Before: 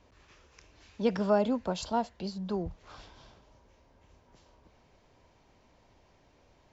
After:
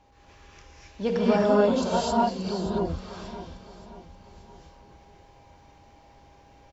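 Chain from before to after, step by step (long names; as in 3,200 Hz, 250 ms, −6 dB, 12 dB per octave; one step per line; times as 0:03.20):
steady tone 810 Hz −62 dBFS
repeating echo 579 ms, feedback 44%, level −14 dB
reverb whose tail is shaped and stops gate 300 ms rising, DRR −6 dB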